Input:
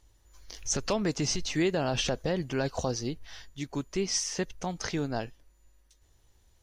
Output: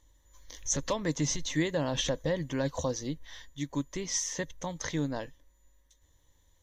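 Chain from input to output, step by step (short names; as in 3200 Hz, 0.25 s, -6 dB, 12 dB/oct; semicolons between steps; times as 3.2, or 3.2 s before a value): ripple EQ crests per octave 1.1, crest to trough 10 dB; gain -3 dB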